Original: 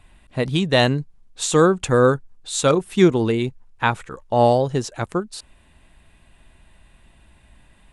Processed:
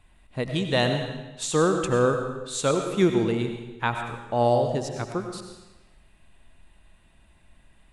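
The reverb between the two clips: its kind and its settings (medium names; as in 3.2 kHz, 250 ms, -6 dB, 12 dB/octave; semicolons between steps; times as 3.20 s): algorithmic reverb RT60 1.1 s, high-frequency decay 0.95×, pre-delay 55 ms, DRR 5 dB; trim -6.5 dB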